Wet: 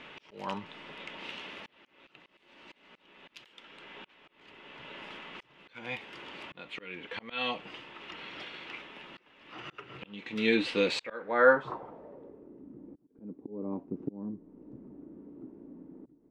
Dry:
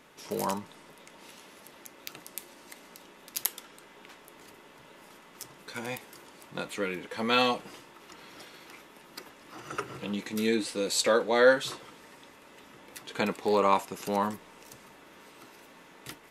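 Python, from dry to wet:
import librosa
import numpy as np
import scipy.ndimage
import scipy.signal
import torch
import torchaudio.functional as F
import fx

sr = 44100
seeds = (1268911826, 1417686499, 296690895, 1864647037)

p1 = fx.rider(x, sr, range_db=5, speed_s=2.0)
p2 = x + (p1 * 10.0 ** (-3.0 / 20.0))
p3 = fx.auto_swell(p2, sr, attack_ms=691.0)
p4 = fx.filter_sweep_lowpass(p3, sr, from_hz=2900.0, to_hz=290.0, start_s=10.84, end_s=12.62, q=2.8)
y = p4 * 10.0 ** (-1.0 / 20.0)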